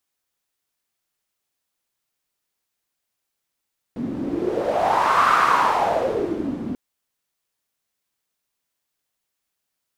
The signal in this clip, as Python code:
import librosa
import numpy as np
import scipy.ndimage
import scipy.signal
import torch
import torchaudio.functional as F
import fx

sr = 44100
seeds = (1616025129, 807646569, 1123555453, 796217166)

y = fx.wind(sr, seeds[0], length_s=2.79, low_hz=240.0, high_hz=1200.0, q=5.1, gusts=1, swing_db=11.0)